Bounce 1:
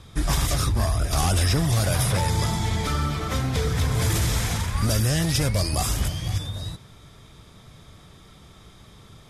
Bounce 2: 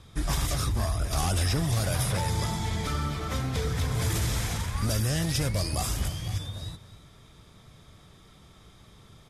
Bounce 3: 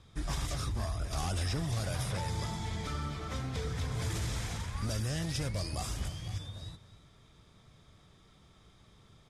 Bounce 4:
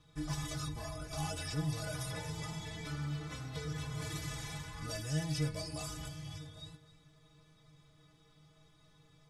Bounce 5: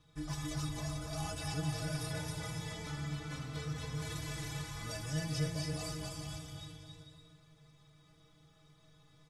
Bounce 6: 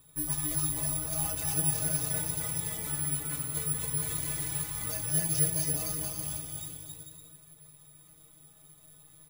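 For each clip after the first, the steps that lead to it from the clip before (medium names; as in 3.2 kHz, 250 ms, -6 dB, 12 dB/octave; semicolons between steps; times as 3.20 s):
delay 264 ms -16 dB; trim -5 dB
low-pass 9 kHz 12 dB/octave; trim -7 dB
inharmonic resonator 150 Hz, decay 0.23 s, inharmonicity 0.008; trim +7 dB
bouncing-ball echo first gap 270 ms, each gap 0.65×, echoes 5; trim -2 dB
careless resampling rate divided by 4×, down filtered, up zero stuff; trim +1.5 dB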